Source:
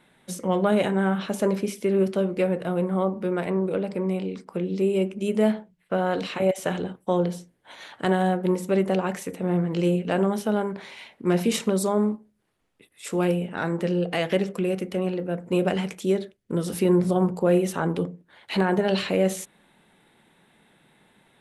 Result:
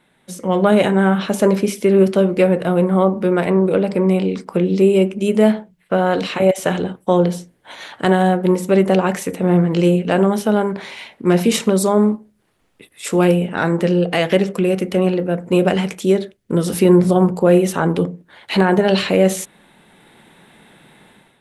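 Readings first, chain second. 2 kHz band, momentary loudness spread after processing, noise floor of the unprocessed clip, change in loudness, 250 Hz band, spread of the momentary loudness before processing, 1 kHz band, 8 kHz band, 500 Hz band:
+8.5 dB, 8 LU, -64 dBFS, +8.5 dB, +8.5 dB, 8 LU, +8.0 dB, +8.0 dB, +8.5 dB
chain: AGC gain up to 12 dB

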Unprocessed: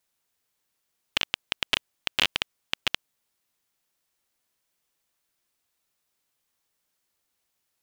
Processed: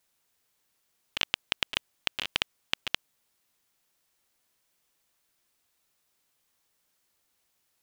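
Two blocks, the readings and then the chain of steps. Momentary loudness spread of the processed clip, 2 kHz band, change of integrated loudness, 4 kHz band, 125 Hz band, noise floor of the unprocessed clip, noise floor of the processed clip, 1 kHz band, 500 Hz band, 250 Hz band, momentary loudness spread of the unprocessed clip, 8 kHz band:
4 LU, -3.5 dB, -3.0 dB, -3.5 dB, -2.5 dB, -78 dBFS, -75 dBFS, -3.5 dB, -3.5 dB, -3.5 dB, 7 LU, -3.5 dB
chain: negative-ratio compressor -28 dBFS, ratio -0.5

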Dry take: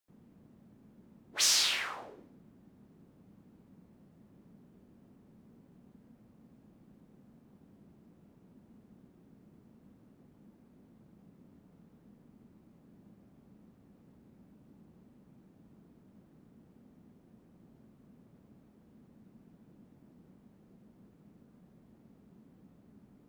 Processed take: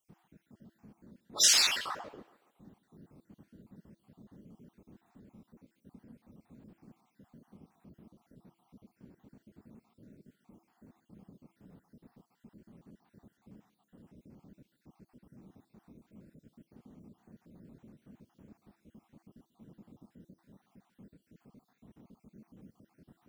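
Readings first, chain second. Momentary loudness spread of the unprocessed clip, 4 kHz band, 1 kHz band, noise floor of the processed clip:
19 LU, +2.0 dB, +3.0 dB, -79 dBFS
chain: random spectral dropouts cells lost 52%; de-hum 332.8 Hz, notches 7; tape echo 0.142 s, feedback 52%, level -19.5 dB, low-pass 3100 Hz; gain +5 dB

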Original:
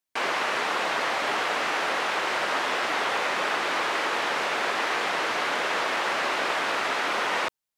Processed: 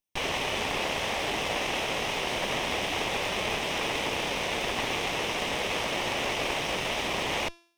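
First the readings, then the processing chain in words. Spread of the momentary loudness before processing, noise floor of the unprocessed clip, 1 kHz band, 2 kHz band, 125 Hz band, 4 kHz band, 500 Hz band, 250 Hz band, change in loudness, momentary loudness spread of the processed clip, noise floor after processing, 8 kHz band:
0 LU, under -85 dBFS, -6.0 dB, -5.0 dB, +11.5 dB, +0.5 dB, -1.5 dB, +2.0 dB, -3.0 dB, 1 LU, -48 dBFS, +1.5 dB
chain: minimum comb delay 0.35 ms; de-hum 340.6 Hz, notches 39; gain -1 dB

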